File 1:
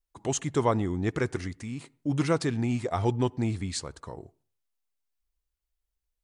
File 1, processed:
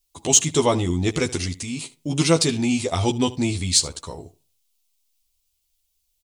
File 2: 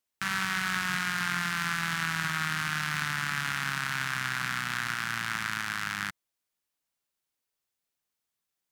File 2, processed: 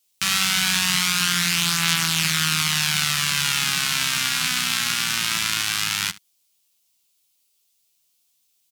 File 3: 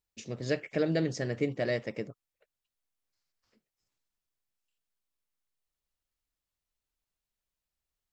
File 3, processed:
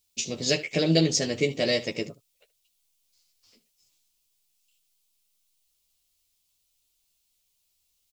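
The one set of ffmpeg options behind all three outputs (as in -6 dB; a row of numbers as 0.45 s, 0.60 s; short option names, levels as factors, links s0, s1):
-af "highshelf=f=2200:g=-10,aexciter=amount=4:drive=9.5:freq=2500,aecho=1:1:12|76:0.668|0.126,volume=1.68"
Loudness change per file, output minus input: +8.0 LU, +10.5 LU, +6.5 LU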